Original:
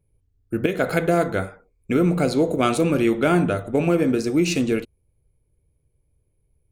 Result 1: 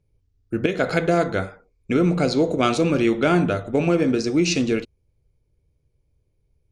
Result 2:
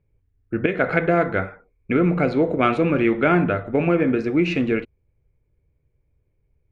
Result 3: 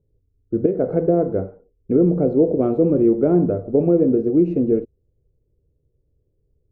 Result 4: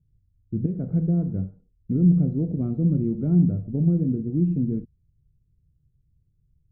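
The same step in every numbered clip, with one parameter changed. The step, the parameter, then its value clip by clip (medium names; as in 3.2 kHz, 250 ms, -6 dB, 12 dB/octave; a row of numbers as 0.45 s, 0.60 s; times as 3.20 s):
resonant low-pass, frequency: 5.6 kHz, 2.1 kHz, 460 Hz, 170 Hz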